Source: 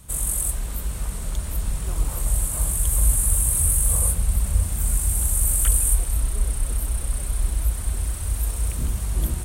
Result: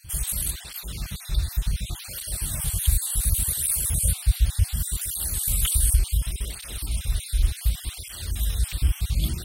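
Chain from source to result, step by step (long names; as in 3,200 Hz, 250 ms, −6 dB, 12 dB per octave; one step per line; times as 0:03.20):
time-frequency cells dropped at random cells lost 36%
octave-band graphic EQ 250/500/1,000/4,000/8,000 Hz −6/−8/−10/+11/−9 dB
through-zero flanger with one copy inverted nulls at 0.68 Hz, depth 5.1 ms
level +7 dB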